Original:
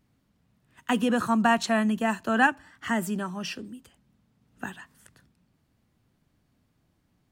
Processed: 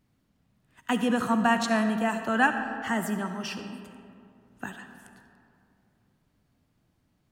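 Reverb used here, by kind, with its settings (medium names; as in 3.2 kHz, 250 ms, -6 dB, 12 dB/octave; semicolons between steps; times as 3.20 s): algorithmic reverb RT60 2.6 s, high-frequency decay 0.45×, pre-delay 25 ms, DRR 7 dB; trim -1.5 dB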